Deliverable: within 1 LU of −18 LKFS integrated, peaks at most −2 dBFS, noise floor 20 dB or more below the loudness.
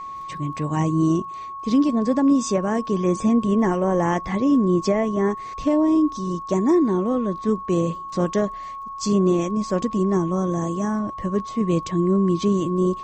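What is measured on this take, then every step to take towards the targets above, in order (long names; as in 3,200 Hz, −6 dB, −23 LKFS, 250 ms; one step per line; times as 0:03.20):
crackle rate 35 per second; interfering tone 1,100 Hz; level of the tone −31 dBFS; integrated loudness −21.5 LKFS; sample peak −8.5 dBFS; target loudness −18.0 LKFS
→ click removal
notch filter 1,100 Hz, Q 30
level +3.5 dB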